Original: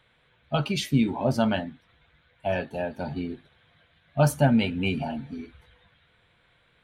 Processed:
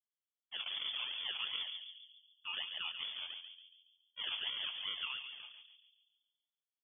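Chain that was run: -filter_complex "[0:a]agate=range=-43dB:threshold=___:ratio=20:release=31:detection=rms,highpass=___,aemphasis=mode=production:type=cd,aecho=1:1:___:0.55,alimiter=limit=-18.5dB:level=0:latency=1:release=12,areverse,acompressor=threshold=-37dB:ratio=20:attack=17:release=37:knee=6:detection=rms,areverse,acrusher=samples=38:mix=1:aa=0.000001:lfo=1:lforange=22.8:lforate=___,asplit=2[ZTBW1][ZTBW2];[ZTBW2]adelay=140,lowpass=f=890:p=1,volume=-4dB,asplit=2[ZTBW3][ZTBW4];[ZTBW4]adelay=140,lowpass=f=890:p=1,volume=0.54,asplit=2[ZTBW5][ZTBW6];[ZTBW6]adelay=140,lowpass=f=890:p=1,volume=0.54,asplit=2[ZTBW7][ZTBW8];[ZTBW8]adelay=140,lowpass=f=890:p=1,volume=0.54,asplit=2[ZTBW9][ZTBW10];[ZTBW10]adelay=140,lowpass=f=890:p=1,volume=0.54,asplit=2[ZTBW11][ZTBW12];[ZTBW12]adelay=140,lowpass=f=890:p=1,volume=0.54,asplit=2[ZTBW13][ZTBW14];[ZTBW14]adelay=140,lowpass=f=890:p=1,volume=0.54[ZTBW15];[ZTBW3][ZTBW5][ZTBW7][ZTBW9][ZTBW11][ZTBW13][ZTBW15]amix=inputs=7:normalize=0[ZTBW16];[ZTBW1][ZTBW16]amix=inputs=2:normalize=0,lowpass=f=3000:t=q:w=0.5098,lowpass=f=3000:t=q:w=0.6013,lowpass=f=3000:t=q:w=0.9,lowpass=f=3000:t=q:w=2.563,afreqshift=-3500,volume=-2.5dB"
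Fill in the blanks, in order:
-55dB, 640, 6.2, 2.7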